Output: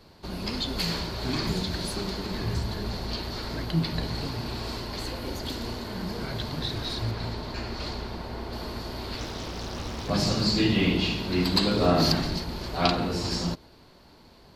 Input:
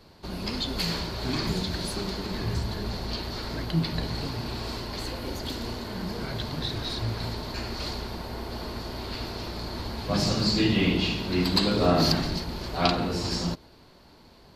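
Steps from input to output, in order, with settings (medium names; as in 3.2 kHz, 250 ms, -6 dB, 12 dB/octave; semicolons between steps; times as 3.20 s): 7.11–8.53 s: treble shelf 7.2 kHz -10.5 dB; 9.17–10.10 s: loudspeaker Doppler distortion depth 0.92 ms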